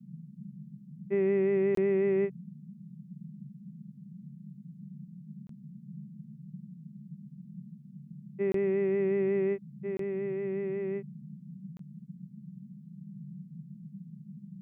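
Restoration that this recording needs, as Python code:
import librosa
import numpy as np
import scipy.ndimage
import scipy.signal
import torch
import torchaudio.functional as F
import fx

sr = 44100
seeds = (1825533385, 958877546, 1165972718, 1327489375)

y = fx.fix_interpolate(x, sr, at_s=(1.75, 5.47, 8.52, 9.97, 11.77), length_ms=23.0)
y = fx.noise_reduce(y, sr, print_start_s=7.6, print_end_s=8.1, reduce_db=25.0)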